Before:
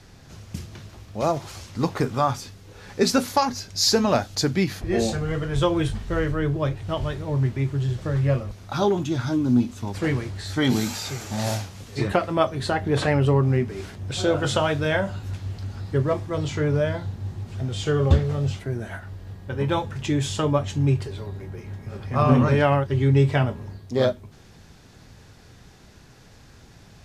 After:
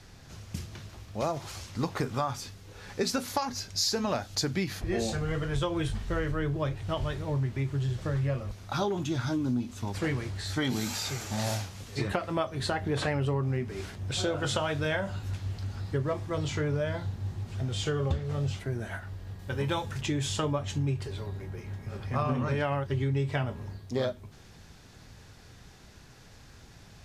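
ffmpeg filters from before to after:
ffmpeg -i in.wav -filter_complex "[0:a]asettb=1/sr,asplit=3[link_01][link_02][link_03];[link_01]atrim=end=19.394[link_04];[link_02]atrim=start=19.39:end=20.01,asetpts=PTS-STARTPTS,afade=type=in:duration=0.004:curve=qsin,afade=type=out:start_time=0.616:duration=0.004:curve=qsin,highshelf=frequency=3600:gain=8[link_05];[link_03]atrim=start=20.006[link_06];[link_04][link_05]acrossfade=duration=0.004:curve1=hsin:curve2=qsin[link_07];[link_07][link_06]acrossfade=duration=0.004:curve1=qsin:curve2=hsin,equalizer=frequency=280:width_type=o:width=3:gain=-3,acompressor=threshold=-24dB:ratio=6,volume=-1.5dB" out.wav

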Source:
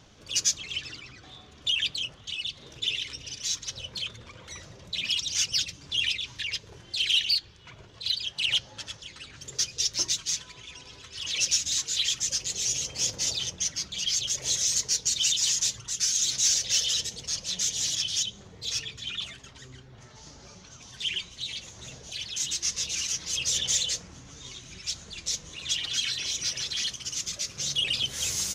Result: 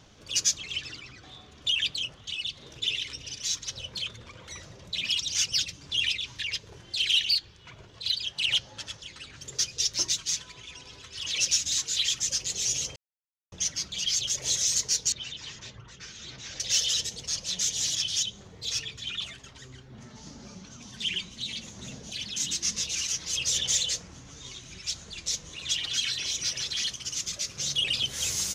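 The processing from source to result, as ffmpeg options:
ffmpeg -i in.wav -filter_complex "[0:a]asettb=1/sr,asplit=3[link_01][link_02][link_03];[link_01]atrim=end=15.124[link_04];[link_02]atrim=start=15.12:end=16.6,asetpts=PTS-STARTPTS,afade=type=in:duration=0.004:curve=qsin,afade=type=out:start_time=1.476:duration=0.004:curve=qsin,lowpass=1800[link_05];[link_03]atrim=start=16.596[link_06];[link_04][link_05]acrossfade=duration=0.004:curve1=hsin:curve2=qsin[link_07];[link_07][link_06]acrossfade=duration=0.004:curve1=qsin:curve2=hsin,asettb=1/sr,asplit=3[link_08][link_09][link_10];[link_08]atrim=end=19.904[link_11];[link_09]atrim=start=19.9:end=22.82,asetpts=PTS-STARTPTS,afade=type=in:duration=0.004:curve=qsin,afade=type=out:start_time=2.916:duration=0.004:curve=qsin,equalizer=frequency=220:width_type=o:width=0.77:gain=12.5[link_12];[link_10]atrim=start=22.816[link_13];[link_11][link_12]acrossfade=duration=0.004:curve1=hsin:curve2=qsin[link_14];[link_14][link_13]acrossfade=duration=0.004:curve1=qsin:curve2=hsin,asplit=3[link_15][link_16][link_17];[link_15]atrim=end=12.96,asetpts=PTS-STARTPTS,afade=type=out:start_time=12.956:duration=0.004:curve=hsin[link_18];[link_16]atrim=start=12.96:end=13.52,asetpts=PTS-STARTPTS,volume=0[link_19];[link_17]atrim=start=13.52,asetpts=PTS-STARTPTS,afade=type=in:duration=0.004:curve=hsin[link_20];[link_18][link_19][link_20]concat=n=3:v=0:a=1" out.wav

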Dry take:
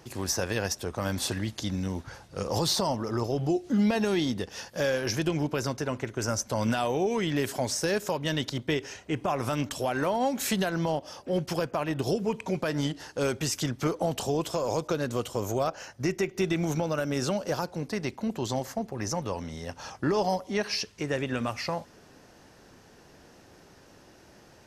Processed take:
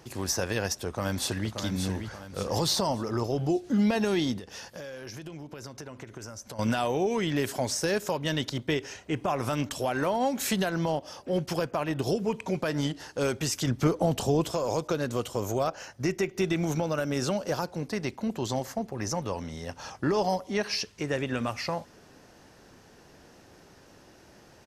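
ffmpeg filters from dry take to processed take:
ffmpeg -i in.wav -filter_complex "[0:a]asplit=2[link_01][link_02];[link_02]afade=type=in:start_time=0.86:duration=0.01,afade=type=out:start_time=1.5:duration=0.01,aecho=0:1:580|1160|1740|2320|2900:0.473151|0.189261|0.0757042|0.0302817|0.0121127[link_03];[link_01][link_03]amix=inputs=2:normalize=0,asettb=1/sr,asplit=3[link_04][link_05][link_06];[link_04]atrim=end=4.384[link_07];[link_05]atrim=start=4.38:end=6.59,asetpts=PTS-STARTPTS,afade=type=in:duration=0.004:curve=qsin,afade=type=out:start_time=2.206:duration=0.004:curve=qsin,acompressor=threshold=-37dB:ratio=10:attack=3.2:release=140:knee=1:detection=peak[link_08];[link_06]atrim=start=6.586[link_09];[link_07][link_08]acrossfade=duration=0.004:curve1=hsin:curve2=qsin[link_10];[link_10][link_09]acrossfade=duration=0.004:curve1=qsin:curve2=hsin,asettb=1/sr,asplit=3[link_11][link_12][link_13];[link_11]atrim=end=13.674[link_14];[link_12]atrim=start=13.67:end=14.52,asetpts=PTS-STARTPTS,afade=type=in:duration=0.004:curve=qsin,afade=type=out:start_time=0.846:duration=0.004:curve=qsin,lowshelf=frequency=360:gain=6.5[link_15];[link_13]atrim=start=14.516[link_16];[link_14][link_15]acrossfade=duration=0.004:curve1=hsin:curve2=qsin[link_17];[link_17][link_16]acrossfade=duration=0.004:curve1=qsin:curve2=hsin" out.wav

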